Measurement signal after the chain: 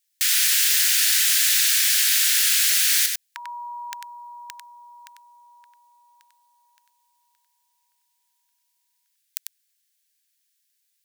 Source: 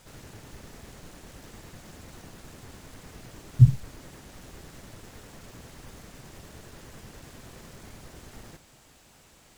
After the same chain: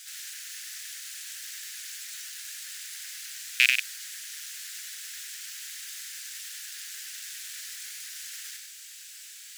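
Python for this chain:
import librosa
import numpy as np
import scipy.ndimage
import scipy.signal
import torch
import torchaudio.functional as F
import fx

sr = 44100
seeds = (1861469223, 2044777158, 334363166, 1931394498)

y = fx.rattle_buzz(x, sr, strikes_db=-22.0, level_db=-13.0)
y = scipy.signal.sosfilt(scipy.signal.ellip(4, 1.0, 60, 1600.0, 'highpass', fs=sr, output='sos'), y)
y = fx.high_shelf(y, sr, hz=2900.0, db=11.0)
y = y + 10.0 ** (-5.5 / 20.0) * np.pad(y, (int(96 * sr / 1000.0), 0))[:len(y)]
y = y * librosa.db_to_amplitude(5.0)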